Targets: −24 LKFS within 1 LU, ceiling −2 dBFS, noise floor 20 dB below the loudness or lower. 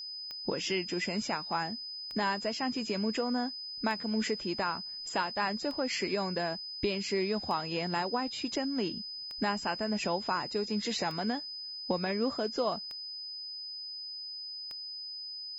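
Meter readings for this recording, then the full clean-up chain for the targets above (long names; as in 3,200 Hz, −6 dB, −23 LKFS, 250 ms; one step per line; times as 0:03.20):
number of clicks 9; interfering tone 5,000 Hz; level of the tone −39 dBFS; integrated loudness −33.5 LKFS; sample peak −17.0 dBFS; target loudness −24.0 LKFS
→ click removal
notch filter 5,000 Hz, Q 30
level +9.5 dB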